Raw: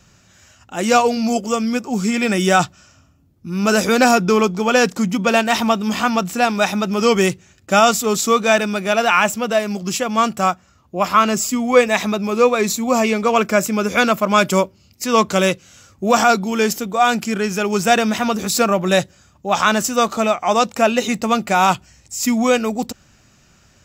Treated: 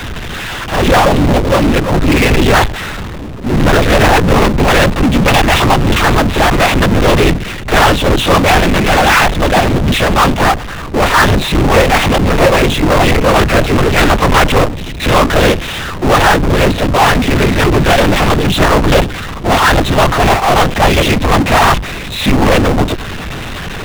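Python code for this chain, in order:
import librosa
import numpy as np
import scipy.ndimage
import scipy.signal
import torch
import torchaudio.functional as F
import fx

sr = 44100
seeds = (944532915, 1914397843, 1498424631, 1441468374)

y = fx.noise_vocoder(x, sr, seeds[0], bands=12)
y = fx.lpc_vocoder(y, sr, seeds[1], excitation='whisper', order=10)
y = fx.power_curve(y, sr, exponent=0.35)
y = F.gain(torch.from_numpy(y), -2.5).numpy()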